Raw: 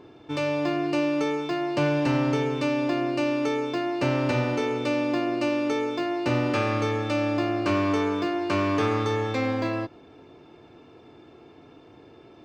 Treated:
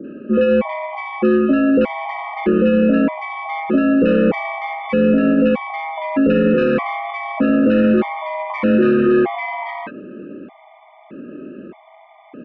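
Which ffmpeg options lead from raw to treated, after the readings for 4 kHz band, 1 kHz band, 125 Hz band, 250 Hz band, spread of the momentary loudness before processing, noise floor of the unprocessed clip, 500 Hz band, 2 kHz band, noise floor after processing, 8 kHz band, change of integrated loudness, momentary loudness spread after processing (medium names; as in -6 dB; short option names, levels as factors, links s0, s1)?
-2.0 dB, +5.5 dB, +1.5 dB, +10.0 dB, 4 LU, -51 dBFS, +9.0 dB, +6.5 dB, -47 dBFS, under -20 dB, +8.5 dB, 15 LU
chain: -filter_complex "[0:a]equalizer=f=470:w=0.75:g=5,aeval=exprs='0.355*(cos(1*acos(clip(val(0)/0.355,-1,1)))-cos(1*PI/2))+0.0141*(cos(8*acos(clip(val(0)/0.355,-1,1)))-cos(8*PI/2))':c=same,highpass=f=250:t=q:w=0.5412,highpass=f=250:t=q:w=1.307,lowpass=f=2800:t=q:w=0.5176,lowpass=f=2800:t=q:w=0.7071,lowpass=f=2800:t=q:w=1.932,afreqshift=-75,asoftclip=type=tanh:threshold=0.188,acrossover=split=1000[s0][s1];[s1]adelay=40[s2];[s0][s2]amix=inputs=2:normalize=0,alimiter=level_in=9.44:limit=0.891:release=50:level=0:latency=1,afftfilt=real='re*gt(sin(2*PI*0.81*pts/sr)*(1-2*mod(floor(b*sr/1024/610),2)),0)':imag='im*gt(sin(2*PI*0.81*pts/sr)*(1-2*mod(floor(b*sr/1024/610),2)),0)':win_size=1024:overlap=0.75,volume=0.531"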